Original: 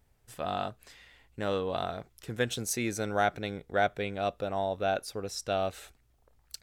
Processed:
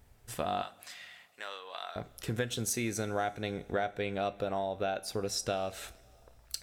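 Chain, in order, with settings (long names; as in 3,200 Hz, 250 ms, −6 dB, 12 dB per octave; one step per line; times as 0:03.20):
downward compressor 6 to 1, threshold −37 dBFS, peak gain reduction 15 dB
0:00.62–0:01.96: high-pass filter 1,200 Hz 12 dB per octave
coupled-rooms reverb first 0.29 s, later 2.5 s, from −18 dB, DRR 11.5 dB
level +6.5 dB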